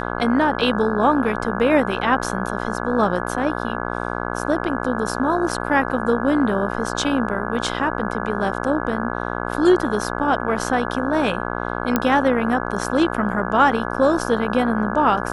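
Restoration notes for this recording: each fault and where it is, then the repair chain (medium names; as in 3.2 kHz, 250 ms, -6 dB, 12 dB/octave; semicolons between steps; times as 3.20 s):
buzz 60 Hz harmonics 28 -26 dBFS
11.96 s: pop -4 dBFS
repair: de-click; de-hum 60 Hz, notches 28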